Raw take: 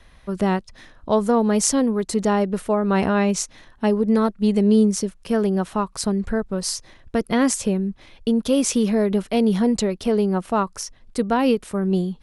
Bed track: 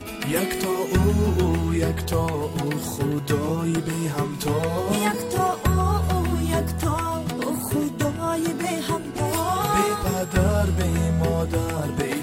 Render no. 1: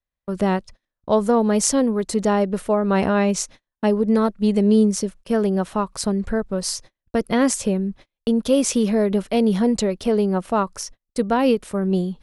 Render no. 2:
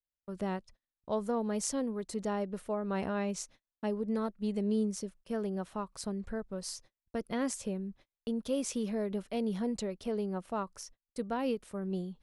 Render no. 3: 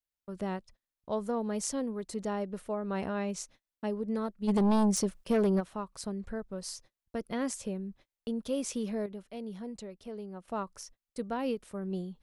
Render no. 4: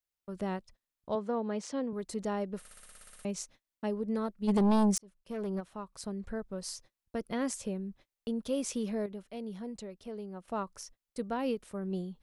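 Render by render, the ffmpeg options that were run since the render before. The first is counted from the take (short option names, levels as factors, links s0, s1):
-af "agate=range=0.0112:threshold=0.0126:ratio=16:detection=peak,equalizer=f=560:w=3.7:g=3.5"
-af "volume=0.178"
-filter_complex "[0:a]asplit=3[s0][s1][s2];[s0]afade=t=out:st=4.47:d=0.02[s3];[s1]aeval=exprs='0.0841*sin(PI/2*2.24*val(0)/0.0841)':c=same,afade=t=in:st=4.47:d=0.02,afade=t=out:st=5.59:d=0.02[s4];[s2]afade=t=in:st=5.59:d=0.02[s5];[s3][s4][s5]amix=inputs=3:normalize=0,asplit=3[s6][s7][s8];[s6]atrim=end=9.062[s9];[s7]atrim=start=9.058:end=10.482,asetpts=PTS-STARTPTS,volume=0.422[s10];[s8]atrim=start=10.478[s11];[s9][s10]acrossfade=d=0.004:c1=hsin:c2=hsin[s12];[s12][s11]acrossfade=d=0.004:c1=hsin:c2=hsin"
-filter_complex "[0:a]asettb=1/sr,asplit=3[s0][s1][s2];[s0]atrim=end=1.154[s3];[s1]atrim=start=1.15:end=1.93,asetpts=PTS-STARTPTS,afade=t=in:d=0.004:c=qsin,afade=t=out:st=0.776:d=0.004:c=qsin,highpass=180,lowpass=3900[s4];[s2]atrim=start=1.926[s5];[s3][s4]acrossfade=d=0.004:c1=hsin:c2=qsin[s6];[s6][s5]acrossfade=d=0.004:c1=qsin:c2=hsin,asplit=13[s7][s8][s9][s10][s11][s12][s13][s14][s15][s16][s17][s18][s19];[s7]atrim=end=2.652[s20];[s8]atrim=start=2.588:end=2.652[s21];[s9]atrim=start=2.588:end=2.652[s22];[s10]atrim=start=2.588:end=2.652[s23];[s11]atrim=start=2.588:end=2.652[s24];[s12]atrim=start=2.588:end=2.652[s25];[s13]atrim=start=2.588:end=2.652[s26];[s14]atrim=start=2.588:end=2.652[s27];[s15]atrim=start=2.588:end=2.652[s28];[s16]atrim=start=2.588:end=2.652[s29];[s17]atrim=start=2.588:end=2.652[s30];[s18]atrim=start=3.248:end=4.98,asetpts=PTS-STARTPTS,afade=t=out:st=1.728:d=0.004:c=hsin[s31];[s19]atrim=start=4.98,asetpts=PTS-STARTPTS,afade=t=in:d=1.37[s32];[s20][s21]acrossfade=d=0.004:c1=hsin:c2=hsin[s33];[s33][s22]acrossfade=d=0.004:c1=hsin:c2=hsin[s34];[s34][s23]acrossfade=d=0.004:c1=hsin:c2=hsin[s35];[s35][s24]acrossfade=d=0.004:c1=hsin:c2=hsin[s36];[s36][s25]acrossfade=d=0.004:c1=hsin:c2=hsin[s37];[s37][s26]acrossfade=d=0.004:c1=hsin:c2=hsin[s38];[s38][s27]acrossfade=d=0.004:c1=hsin:c2=hsin[s39];[s39][s28]acrossfade=d=0.004:c1=hsin:c2=hsin[s40];[s40][s29]acrossfade=d=0.004:c1=hsin:c2=hsin[s41];[s41][s30]acrossfade=d=0.004:c1=hsin:c2=hsin[s42];[s31][s32]concat=n=2:v=0:a=1[s43];[s42][s43]acrossfade=d=0.004:c1=hsin:c2=hsin"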